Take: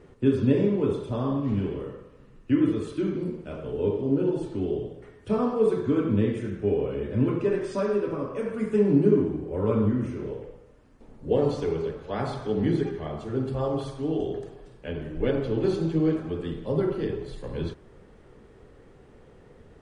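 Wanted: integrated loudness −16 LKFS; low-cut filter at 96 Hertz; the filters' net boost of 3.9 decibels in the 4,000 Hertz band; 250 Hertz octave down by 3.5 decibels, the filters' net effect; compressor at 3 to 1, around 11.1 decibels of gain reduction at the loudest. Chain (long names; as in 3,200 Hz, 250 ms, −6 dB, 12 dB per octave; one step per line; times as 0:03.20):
high-pass filter 96 Hz
parametric band 250 Hz −4.5 dB
parametric band 4,000 Hz +5 dB
downward compressor 3 to 1, threshold −33 dBFS
level +20 dB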